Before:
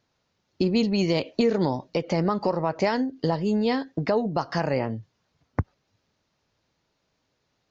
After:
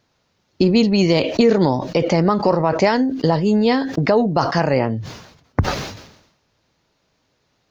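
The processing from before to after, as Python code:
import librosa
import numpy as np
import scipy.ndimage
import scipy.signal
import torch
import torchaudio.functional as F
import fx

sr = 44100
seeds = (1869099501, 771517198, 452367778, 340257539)

y = fx.sustainer(x, sr, db_per_s=69.0)
y = y * librosa.db_to_amplitude(7.5)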